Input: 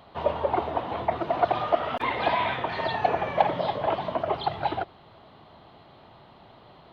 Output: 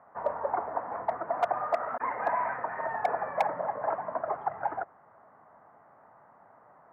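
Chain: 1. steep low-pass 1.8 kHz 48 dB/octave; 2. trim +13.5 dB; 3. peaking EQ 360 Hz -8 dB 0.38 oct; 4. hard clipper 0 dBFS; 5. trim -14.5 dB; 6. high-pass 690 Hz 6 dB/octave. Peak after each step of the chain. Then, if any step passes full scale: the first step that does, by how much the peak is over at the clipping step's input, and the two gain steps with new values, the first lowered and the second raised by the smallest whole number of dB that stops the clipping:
-5.5 dBFS, +8.0 dBFS, +8.0 dBFS, 0.0 dBFS, -14.5 dBFS, -12.5 dBFS; step 2, 8.0 dB; step 2 +5.5 dB, step 5 -6.5 dB

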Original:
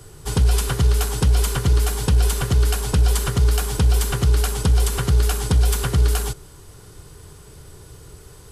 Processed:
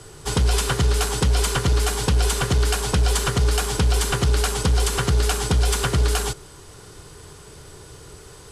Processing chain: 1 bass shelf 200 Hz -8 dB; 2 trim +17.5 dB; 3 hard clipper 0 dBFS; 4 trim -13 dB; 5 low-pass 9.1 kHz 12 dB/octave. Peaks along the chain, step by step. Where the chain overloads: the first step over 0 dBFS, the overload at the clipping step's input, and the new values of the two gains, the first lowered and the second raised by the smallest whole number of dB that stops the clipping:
-9.0 dBFS, +8.5 dBFS, 0.0 dBFS, -13.0 dBFS, -12.0 dBFS; step 2, 8.5 dB; step 2 +8.5 dB, step 4 -4 dB

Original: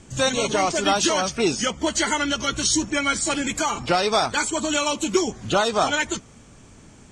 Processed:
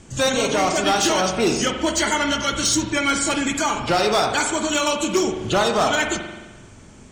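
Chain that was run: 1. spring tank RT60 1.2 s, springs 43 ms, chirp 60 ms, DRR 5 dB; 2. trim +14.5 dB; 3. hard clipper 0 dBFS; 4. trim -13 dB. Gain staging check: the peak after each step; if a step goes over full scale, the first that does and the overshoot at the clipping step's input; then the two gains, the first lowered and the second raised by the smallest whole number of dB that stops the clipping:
-6.0 dBFS, +8.5 dBFS, 0.0 dBFS, -13.0 dBFS; step 2, 8.5 dB; step 2 +5.5 dB, step 4 -4 dB

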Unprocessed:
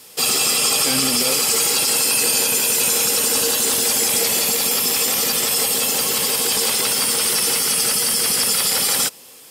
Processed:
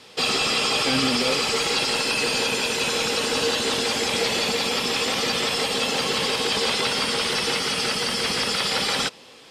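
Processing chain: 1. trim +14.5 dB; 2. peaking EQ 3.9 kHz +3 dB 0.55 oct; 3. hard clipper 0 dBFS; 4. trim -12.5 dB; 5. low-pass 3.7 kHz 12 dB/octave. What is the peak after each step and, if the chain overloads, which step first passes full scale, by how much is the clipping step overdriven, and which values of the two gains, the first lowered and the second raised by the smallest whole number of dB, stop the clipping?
+8.5 dBFS, +9.5 dBFS, 0.0 dBFS, -12.5 dBFS, -12.0 dBFS; step 1, 9.5 dB; step 1 +4.5 dB, step 4 -2.5 dB

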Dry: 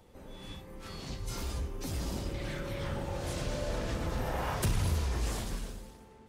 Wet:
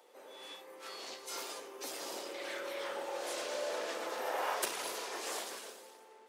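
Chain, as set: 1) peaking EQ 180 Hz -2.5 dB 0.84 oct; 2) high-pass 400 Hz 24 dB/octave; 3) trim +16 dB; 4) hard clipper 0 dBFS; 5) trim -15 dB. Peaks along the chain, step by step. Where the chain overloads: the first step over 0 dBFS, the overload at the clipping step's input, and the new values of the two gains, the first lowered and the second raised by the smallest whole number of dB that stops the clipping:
-20.5 dBFS, -20.5 dBFS, -4.5 dBFS, -4.5 dBFS, -19.5 dBFS; nothing clips

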